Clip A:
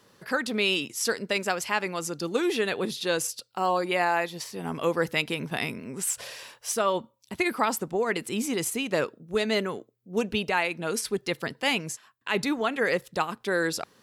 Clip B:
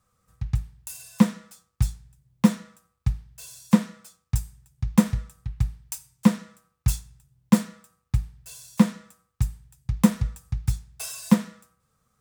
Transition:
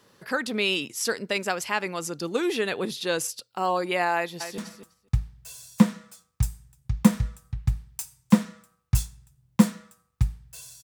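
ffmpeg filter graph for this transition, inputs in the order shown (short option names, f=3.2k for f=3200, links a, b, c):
-filter_complex "[0:a]apad=whole_dur=10.83,atrim=end=10.83,atrim=end=4.582[a];[1:a]atrim=start=2.508:end=8.76[b];[a][b]acrossfade=d=0.004:c1=hsin:c2=hsin,asplit=2[c][d];[d]afade=t=in:st=4.15:d=0.01,afade=t=out:st=4.58:d=0.01,aecho=0:1:250|500:0.316228|0.0316228[e];[c][e]amix=inputs=2:normalize=0"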